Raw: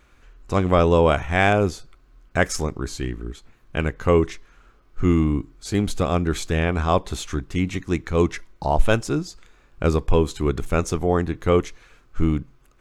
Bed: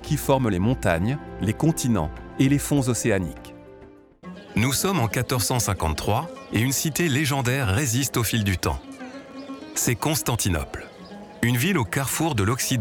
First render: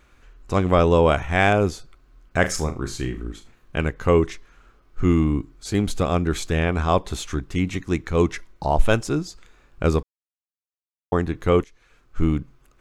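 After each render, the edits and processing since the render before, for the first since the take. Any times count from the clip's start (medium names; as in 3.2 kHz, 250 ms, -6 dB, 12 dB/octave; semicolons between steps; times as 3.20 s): 2.40–3.81 s: flutter echo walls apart 6.5 m, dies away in 0.26 s; 10.03–11.12 s: mute; 11.64–12.25 s: fade in, from -18.5 dB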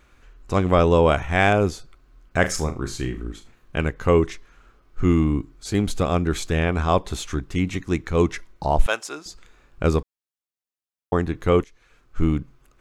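8.86–9.26 s: high-pass 720 Hz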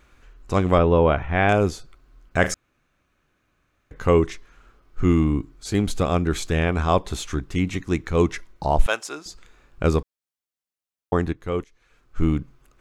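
0.78–1.49 s: distance through air 300 m; 2.54–3.91 s: room tone; 11.33–12.29 s: fade in, from -12.5 dB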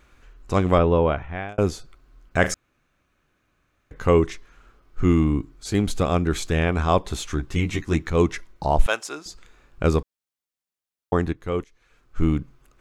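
0.59–1.58 s: fade out equal-power; 7.38–8.10 s: doubling 13 ms -3 dB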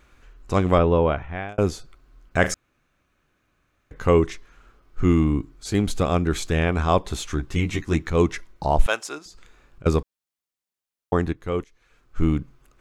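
9.18–9.86 s: compression, threshold -41 dBFS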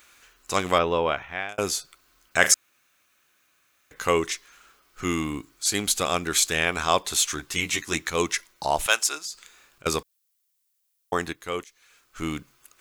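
tilt EQ +4.5 dB/octave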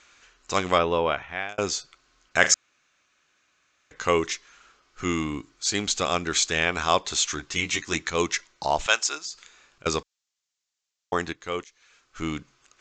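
steep low-pass 7.4 kHz 72 dB/octave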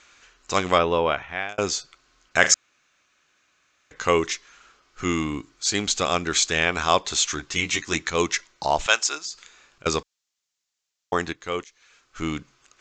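trim +2 dB; peak limiter -1 dBFS, peak gain reduction 1 dB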